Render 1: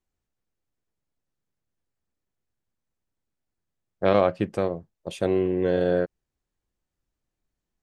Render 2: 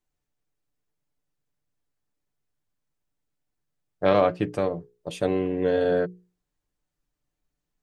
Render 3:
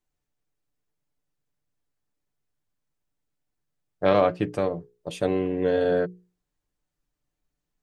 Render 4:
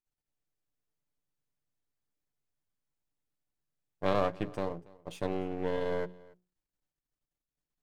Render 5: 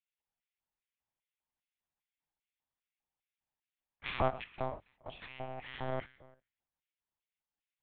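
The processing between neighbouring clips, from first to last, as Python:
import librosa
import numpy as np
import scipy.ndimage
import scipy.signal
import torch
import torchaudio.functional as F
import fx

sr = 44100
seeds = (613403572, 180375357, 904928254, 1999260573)

y1 = fx.hum_notches(x, sr, base_hz=60, count=8)
y1 = y1 + 0.47 * np.pad(y1, (int(6.8 * sr / 1000.0), 0))[:len(y1)]
y2 = y1
y3 = np.where(y2 < 0.0, 10.0 ** (-12.0 / 20.0) * y2, y2)
y3 = y3 + 10.0 ** (-23.0 / 20.0) * np.pad(y3, (int(282 * sr / 1000.0), 0))[:len(y3)]
y3 = F.gain(torch.from_numpy(y3), -6.5).numpy()
y4 = fx.rev_schroeder(y3, sr, rt60_s=0.57, comb_ms=28, drr_db=13.5)
y4 = fx.filter_lfo_highpass(y4, sr, shape='square', hz=2.5, low_hz=730.0, high_hz=2300.0, q=2.3)
y4 = fx.lpc_monotone(y4, sr, seeds[0], pitch_hz=130.0, order=8)
y4 = F.gain(torch.from_numpy(y4), -2.5).numpy()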